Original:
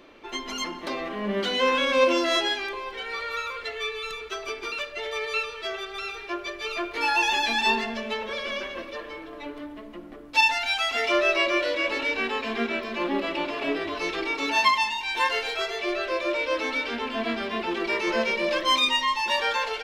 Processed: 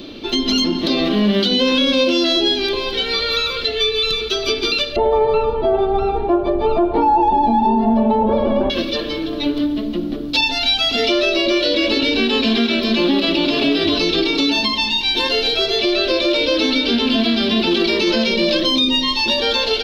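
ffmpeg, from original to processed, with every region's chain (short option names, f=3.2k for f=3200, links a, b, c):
-filter_complex "[0:a]asettb=1/sr,asplit=3[a][b][c];[a]atrim=end=4.964[d];[b]atrim=start=4.96:end=8.7,asetpts=PTS-STARTPTS,afade=t=in:d=0.004:c=qsin,afade=t=out:st=3.736:d=0.004:c=qsin,lowpass=f=850:t=q:w=9.6,lowshelf=f=360:g=11[e];[c]atrim=start=8.696[f];[d][e]acrossfade=d=0.004:c1=hsin:c2=qsin[g];[g][f]acrossfade=d=0.004:c1=qsin:c2=hsin,equalizer=f=125:t=o:w=1:g=4,equalizer=f=250:t=o:w=1:g=5,equalizer=f=500:t=o:w=1:g=-4,equalizer=f=1k:t=o:w=1:g=-11,equalizer=f=2k:t=o:w=1:g=-12,equalizer=f=4k:t=o:w=1:g=12,equalizer=f=8k:t=o:w=1:g=-11,acrossover=split=640|6100[h][i][j];[h]acompressor=threshold=-33dB:ratio=4[k];[i]acompressor=threshold=-36dB:ratio=4[l];[j]acompressor=threshold=-56dB:ratio=4[m];[k][l][m]amix=inputs=3:normalize=0,alimiter=level_in=25dB:limit=-1dB:release=50:level=0:latency=1,volume=-6.5dB"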